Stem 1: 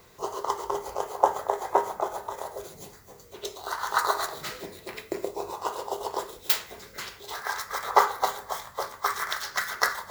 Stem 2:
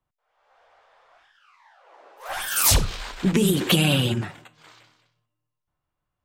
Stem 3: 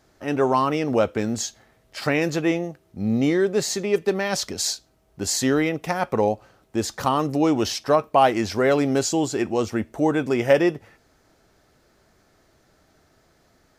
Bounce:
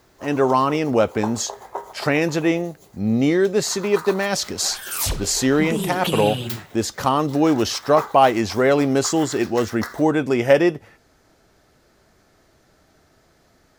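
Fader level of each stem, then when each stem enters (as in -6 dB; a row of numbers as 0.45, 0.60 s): -7.5, -5.5, +2.5 dB; 0.00, 2.35, 0.00 s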